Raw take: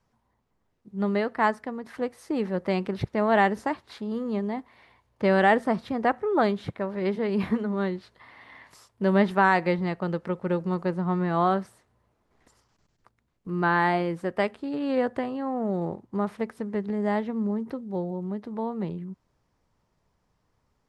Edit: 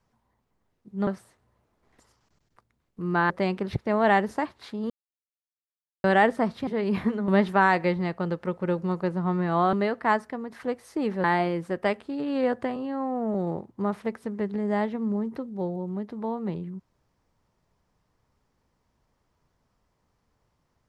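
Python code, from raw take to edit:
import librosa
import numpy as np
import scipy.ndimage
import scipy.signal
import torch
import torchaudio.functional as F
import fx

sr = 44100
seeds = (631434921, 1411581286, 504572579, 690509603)

y = fx.edit(x, sr, fx.swap(start_s=1.07, length_s=1.51, other_s=11.55, other_length_s=2.23),
    fx.silence(start_s=4.18, length_s=1.14),
    fx.cut(start_s=5.95, length_s=1.18),
    fx.cut(start_s=7.74, length_s=1.36),
    fx.stretch_span(start_s=15.3, length_s=0.39, factor=1.5), tone=tone)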